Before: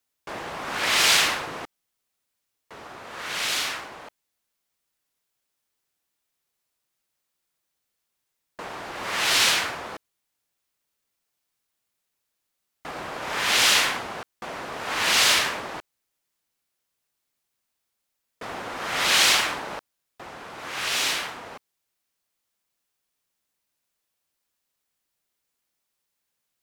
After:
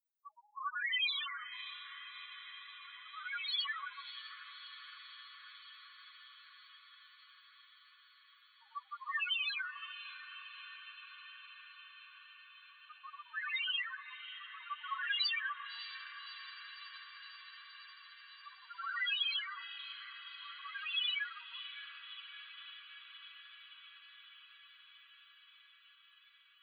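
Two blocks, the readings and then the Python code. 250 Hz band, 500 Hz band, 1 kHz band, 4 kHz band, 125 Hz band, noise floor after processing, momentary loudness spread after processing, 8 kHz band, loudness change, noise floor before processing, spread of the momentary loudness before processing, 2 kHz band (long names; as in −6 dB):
below −40 dB, below −40 dB, −15.5 dB, −13.5 dB, below −40 dB, −65 dBFS, 23 LU, below −40 dB, −18.5 dB, −80 dBFS, 22 LU, −12.5 dB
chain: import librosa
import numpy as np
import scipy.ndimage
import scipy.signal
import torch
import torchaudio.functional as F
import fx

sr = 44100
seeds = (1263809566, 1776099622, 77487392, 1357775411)

y = fx.high_shelf(x, sr, hz=8900.0, db=5.0)
y = fx.rider(y, sr, range_db=10, speed_s=0.5)
y = fx.spec_topn(y, sr, count=1)
y = scipy.signal.sosfilt(scipy.signal.cheby1(6, 3, 1100.0, 'highpass', fs=sr, output='sos'), y)
y = fx.spec_topn(y, sr, count=4)
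y = fx.echo_diffused(y, sr, ms=609, feedback_pct=77, wet_db=-12.0)
y = y * librosa.db_to_amplitude(11.0)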